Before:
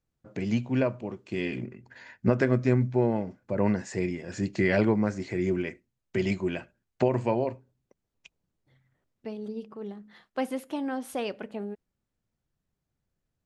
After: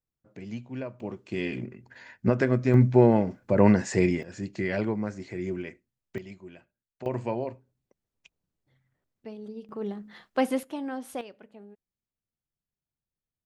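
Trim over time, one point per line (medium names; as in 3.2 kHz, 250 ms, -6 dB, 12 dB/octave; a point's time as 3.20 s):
-10 dB
from 1.00 s 0 dB
from 2.74 s +6.5 dB
from 4.23 s -5 dB
from 6.18 s -16.5 dB
from 7.06 s -4 dB
from 9.69 s +5 dB
from 10.63 s -2.5 dB
from 11.21 s -13 dB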